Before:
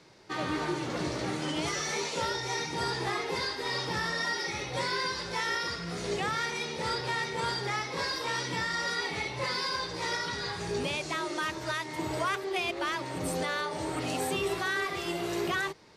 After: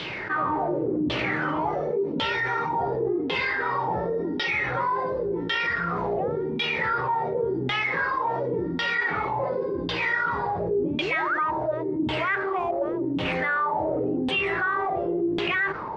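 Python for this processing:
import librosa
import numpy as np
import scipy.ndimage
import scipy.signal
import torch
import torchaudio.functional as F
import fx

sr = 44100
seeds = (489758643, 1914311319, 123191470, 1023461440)

y = fx.spec_paint(x, sr, seeds[0], shape='rise', start_s=10.99, length_s=0.45, low_hz=280.0, high_hz=2600.0, level_db=-35.0)
y = fx.sample_hold(y, sr, seeds[1], rate_hz=9700.0, jitter_pct=20, at=(12.59, 13.33))
y = fx.filter_lfo_lowpass(y, sr, shape='saw_down', hz=0.91, low_hz=250.0, high_hz=3300.0, q=6.9)
y = fx.env_flatten(y, sr, amount_pct=70)
y = F.gain(torch.from_numpy(y), -6.5).numpy()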